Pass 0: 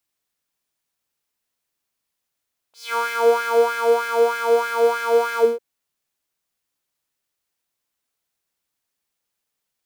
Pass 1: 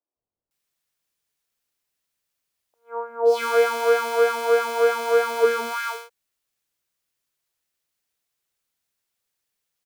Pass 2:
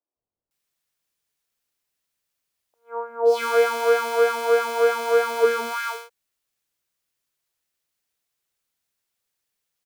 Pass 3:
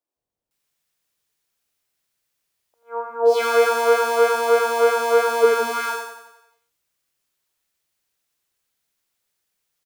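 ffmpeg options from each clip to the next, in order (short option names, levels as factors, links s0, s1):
-filter_complex "[0:a]acrossover=split=260|880[s0][s1][s2];[s0]adelay=160[s3];[s2]adelay=510[s4];[s3][s1][s4]amix=inputs=3:normalize=0"
-af anull
-af "aecho=1:1:89|178|267|356|445|534|623:0.501|0.266|0.141|0.0746|0.0395|0.021|0.0111,volume=1.33"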